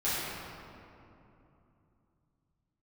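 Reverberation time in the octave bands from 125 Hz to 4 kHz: 4.3 s, 3.8 s, 3.0 s, 2.8 s, 2.1 s, 1.5 s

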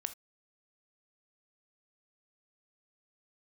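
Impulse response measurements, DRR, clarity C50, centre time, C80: 10.5 dB, 14.5 dB, 4 ms, 25.5 dB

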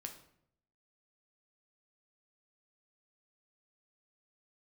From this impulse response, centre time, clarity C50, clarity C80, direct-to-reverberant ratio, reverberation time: 14 ms, 9.5 dB, 13.0 dB, 4.0 dB, 0.70 s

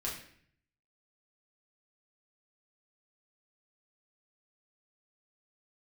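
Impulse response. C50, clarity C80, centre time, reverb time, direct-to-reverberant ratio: 5.5 dB, 9.0 dB, 36 ms, 0.60 s, -5.0 dB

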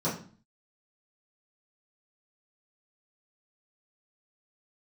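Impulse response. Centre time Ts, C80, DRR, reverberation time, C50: 30 ms, 12.0 dB, -11.0 dB, 0.40 s, 7.0 dB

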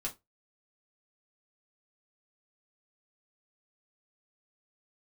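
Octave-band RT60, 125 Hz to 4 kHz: 0.25 s, 0.20 s, 0.20 s, 0.20 s, 0.15 s, 0.15 s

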